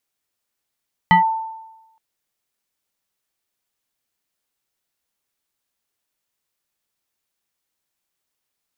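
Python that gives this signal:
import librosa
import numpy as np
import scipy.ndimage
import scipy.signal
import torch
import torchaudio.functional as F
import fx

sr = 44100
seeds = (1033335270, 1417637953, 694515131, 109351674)

y = fx.fm2(sr, length_s=0.87, level_db=-7, carrier_hz=891.0, ratio=1.2, index=1.1, index_s=0.12, decay_s=1.02, shape='linear')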